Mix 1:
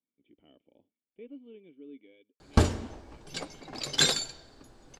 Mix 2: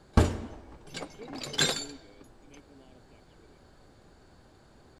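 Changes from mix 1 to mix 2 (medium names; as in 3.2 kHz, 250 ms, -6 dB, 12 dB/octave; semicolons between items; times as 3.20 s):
background: entry -2.40 s; master: add peaking EQ 5.2 kHz -5 dB 1.4 oct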